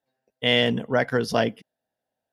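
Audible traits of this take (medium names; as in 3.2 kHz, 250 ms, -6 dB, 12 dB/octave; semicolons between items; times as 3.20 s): noise floor -86 dBFS; spectral tilt -3.0 dB/octave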